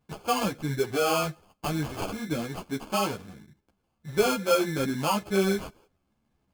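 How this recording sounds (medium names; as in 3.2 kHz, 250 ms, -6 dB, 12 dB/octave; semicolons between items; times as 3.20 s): aliases and images of a low sample rate 1.9 kHz, jitter 0%; a shimmering, thickened sound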